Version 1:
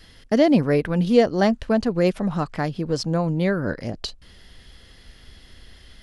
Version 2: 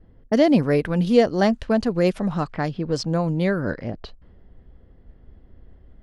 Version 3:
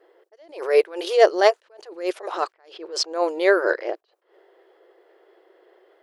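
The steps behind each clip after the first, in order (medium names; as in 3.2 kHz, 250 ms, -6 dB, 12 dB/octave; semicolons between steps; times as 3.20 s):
level-controlled noise filter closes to 510 Hz, open at -18 dBFS
brick-wall FIR high-pass 330 Hz; attacks held to a fixed rise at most 140 dB/s; trim +8.5 dB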